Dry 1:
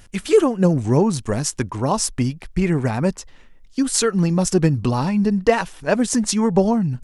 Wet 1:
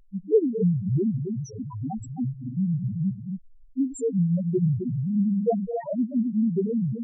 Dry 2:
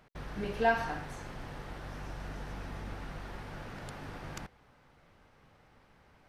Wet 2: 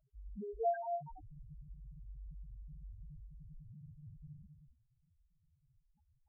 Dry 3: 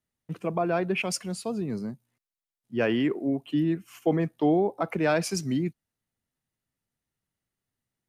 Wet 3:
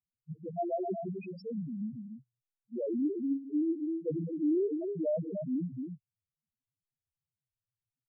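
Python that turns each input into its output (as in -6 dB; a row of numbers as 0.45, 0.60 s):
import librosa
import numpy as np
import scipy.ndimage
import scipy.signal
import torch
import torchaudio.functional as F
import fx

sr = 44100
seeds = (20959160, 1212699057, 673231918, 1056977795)

y = fx.echo_multitap(x, sr, ms=(102, 212, 261), db=(-14.5, -11.0, -6.5))
y = fx.spec_topn(y, sr, count=1)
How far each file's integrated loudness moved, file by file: -6.5, -6.5, -6.5 LU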